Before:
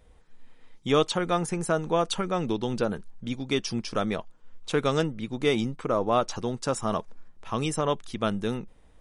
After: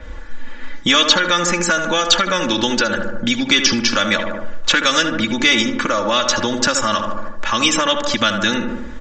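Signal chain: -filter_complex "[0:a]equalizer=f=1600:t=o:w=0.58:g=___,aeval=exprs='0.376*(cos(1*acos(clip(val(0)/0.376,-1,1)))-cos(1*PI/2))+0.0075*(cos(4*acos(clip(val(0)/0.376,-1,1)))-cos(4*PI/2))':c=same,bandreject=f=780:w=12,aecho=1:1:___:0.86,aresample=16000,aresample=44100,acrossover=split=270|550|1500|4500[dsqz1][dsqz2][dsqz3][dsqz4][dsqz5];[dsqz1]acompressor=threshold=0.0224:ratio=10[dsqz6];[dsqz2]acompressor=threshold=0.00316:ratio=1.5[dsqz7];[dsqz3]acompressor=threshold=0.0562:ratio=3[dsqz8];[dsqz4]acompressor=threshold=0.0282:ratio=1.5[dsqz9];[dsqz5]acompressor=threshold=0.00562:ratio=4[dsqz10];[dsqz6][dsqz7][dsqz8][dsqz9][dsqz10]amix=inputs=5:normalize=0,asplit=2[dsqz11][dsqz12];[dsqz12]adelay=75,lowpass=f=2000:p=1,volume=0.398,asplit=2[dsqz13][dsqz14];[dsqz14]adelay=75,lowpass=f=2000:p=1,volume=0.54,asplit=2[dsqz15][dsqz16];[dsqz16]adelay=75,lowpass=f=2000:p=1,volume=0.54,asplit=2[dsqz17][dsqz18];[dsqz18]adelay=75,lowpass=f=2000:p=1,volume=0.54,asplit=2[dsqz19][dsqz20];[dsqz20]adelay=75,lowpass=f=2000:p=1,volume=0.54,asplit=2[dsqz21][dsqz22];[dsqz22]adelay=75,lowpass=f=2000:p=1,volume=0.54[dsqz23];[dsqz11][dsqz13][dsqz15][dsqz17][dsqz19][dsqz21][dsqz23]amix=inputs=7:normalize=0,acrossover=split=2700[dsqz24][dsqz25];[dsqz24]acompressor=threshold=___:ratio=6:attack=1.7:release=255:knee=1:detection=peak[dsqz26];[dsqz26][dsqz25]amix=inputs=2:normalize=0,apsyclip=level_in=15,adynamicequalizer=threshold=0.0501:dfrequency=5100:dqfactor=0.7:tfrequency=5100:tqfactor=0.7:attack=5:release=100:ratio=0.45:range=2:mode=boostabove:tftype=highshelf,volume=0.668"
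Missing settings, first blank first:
10.5, 3.5, 0.0178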